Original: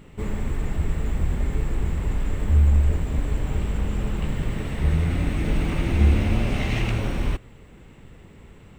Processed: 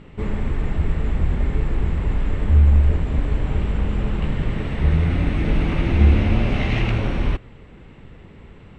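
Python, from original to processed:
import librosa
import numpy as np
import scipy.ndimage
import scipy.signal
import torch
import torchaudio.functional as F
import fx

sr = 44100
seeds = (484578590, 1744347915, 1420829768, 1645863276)

y = scipy.signal.sosfilt(scipy.signal.butter(2, 4000.0, 'lowpass', fs=sr, output='sos'), x)
y = F.gain(torch.from_numpy(y), 3.5).numpy()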